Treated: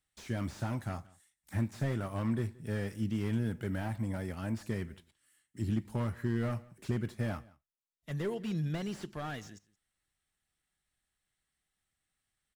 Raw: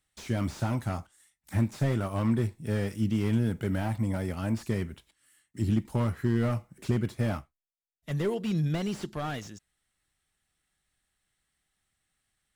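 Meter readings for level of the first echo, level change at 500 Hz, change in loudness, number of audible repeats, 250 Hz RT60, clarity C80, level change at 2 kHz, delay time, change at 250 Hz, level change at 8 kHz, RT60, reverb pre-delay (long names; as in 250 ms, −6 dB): −23.5 dB, −6.0 dB, −6.0 dB, 1, no reverb audible, no reverb audible, −4.0 dB, 174 ms, −6.0 dB, −6.0 dB, no reverb audible, no reverb audible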